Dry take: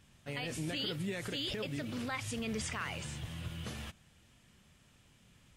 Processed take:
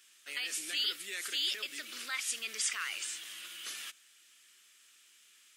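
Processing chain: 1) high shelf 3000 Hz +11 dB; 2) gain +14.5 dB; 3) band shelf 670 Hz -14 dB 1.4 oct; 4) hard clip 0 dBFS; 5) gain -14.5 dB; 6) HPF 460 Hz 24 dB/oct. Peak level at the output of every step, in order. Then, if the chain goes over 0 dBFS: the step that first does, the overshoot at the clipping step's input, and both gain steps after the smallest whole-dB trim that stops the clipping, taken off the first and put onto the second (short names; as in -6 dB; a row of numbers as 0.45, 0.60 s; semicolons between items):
-20.0, -5.5, -5.5, -5.5, -20.0, -20.0 dBFS; no overload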